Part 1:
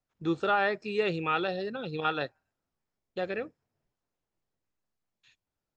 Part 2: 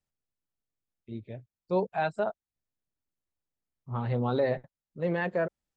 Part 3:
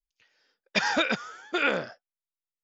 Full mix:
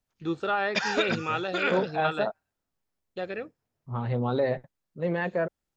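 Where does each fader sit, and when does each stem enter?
−1.0, +1.0, −2.5 decibels; 0.00, 0.00, 0.00 seconds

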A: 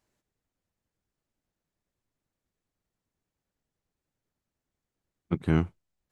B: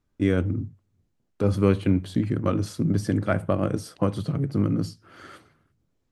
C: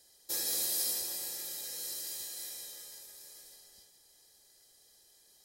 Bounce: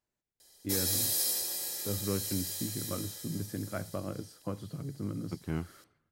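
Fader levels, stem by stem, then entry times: −10.5, −13.5, +2.5 decibels; 0.00, 0.45, 0.40 seconds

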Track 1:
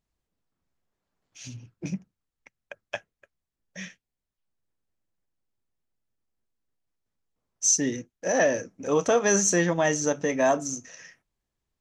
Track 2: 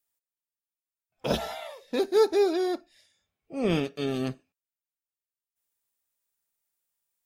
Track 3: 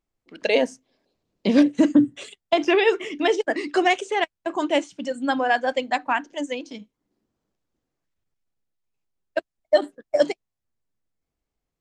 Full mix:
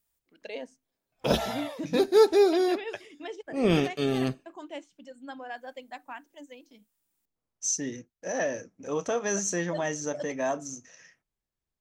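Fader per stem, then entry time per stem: −7.0, +2.5, −18.5 decibels; 0.00, 0.00, 0.00 seconds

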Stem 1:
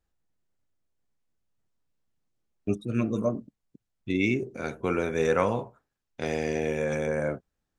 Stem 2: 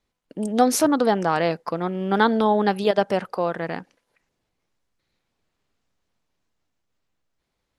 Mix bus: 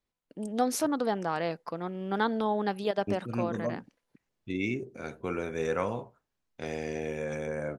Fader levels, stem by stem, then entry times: −6.0, −9.5 decibels; 0.40, 0.00 seconds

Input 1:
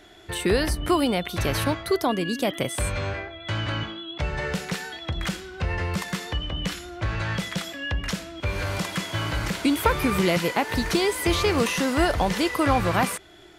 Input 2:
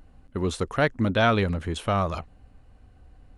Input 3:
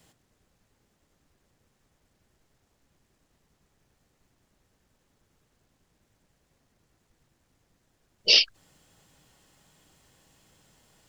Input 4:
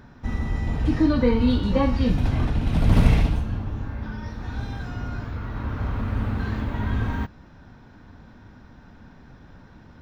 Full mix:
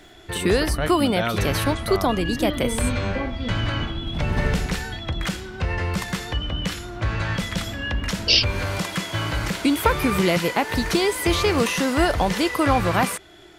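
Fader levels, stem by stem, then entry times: +2.0, −5.0, +1.0, −7.5 decibels; 0.00, 0.00, 0.00, 1.40 seconds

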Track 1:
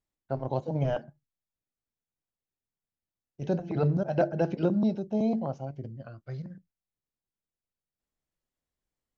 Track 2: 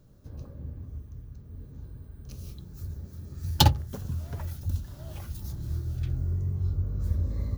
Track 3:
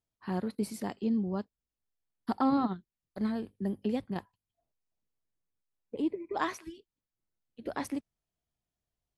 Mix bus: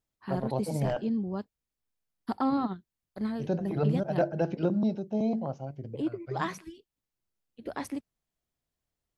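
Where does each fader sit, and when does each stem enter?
−1.5 dB, muted, −0.5 dB; 0.00 s, muted, 0.00 s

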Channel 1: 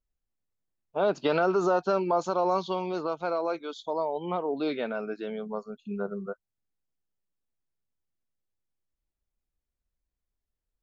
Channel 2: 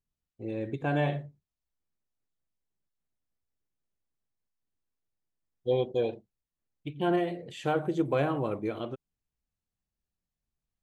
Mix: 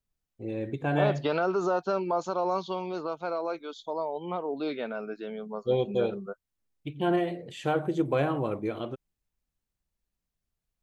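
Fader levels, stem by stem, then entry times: −2.5, +1.0 decibels; 0.00, 0.00 seconds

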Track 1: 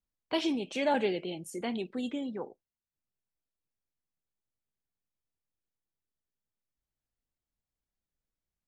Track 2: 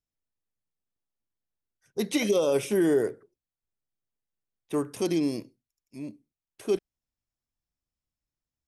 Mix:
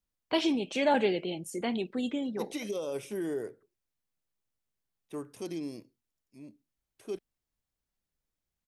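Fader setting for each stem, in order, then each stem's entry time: +2.5, −11.0 decibels; 0.00, 0.40 seconds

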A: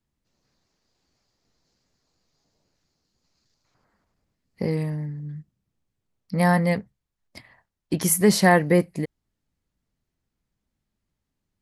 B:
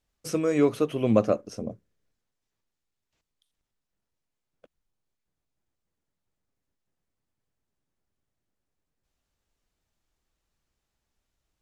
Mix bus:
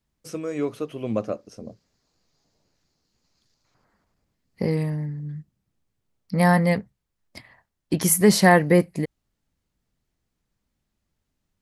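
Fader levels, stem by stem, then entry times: +1.5, −5.0 decibels; 0.00, 0.00 seconds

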